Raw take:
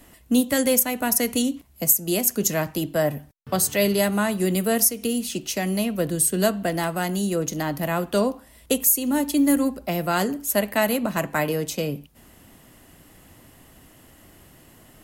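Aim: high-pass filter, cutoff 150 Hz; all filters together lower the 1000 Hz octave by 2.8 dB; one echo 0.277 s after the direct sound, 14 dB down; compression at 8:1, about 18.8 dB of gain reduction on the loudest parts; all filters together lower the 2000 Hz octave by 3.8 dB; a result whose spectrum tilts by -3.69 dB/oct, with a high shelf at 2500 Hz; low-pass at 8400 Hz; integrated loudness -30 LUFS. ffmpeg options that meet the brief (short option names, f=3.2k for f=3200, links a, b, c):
-af "highpass=150,lowpass=8.4k,equalizer=f=1k:t=o:g=-3.5,equalizer=f=2k:t=o:g=-7,highshelf=f=2.5k:g=7,acompressor=threshold=-34dB:ratio=8,aecho=1:1:277:0.2,volume=7dB"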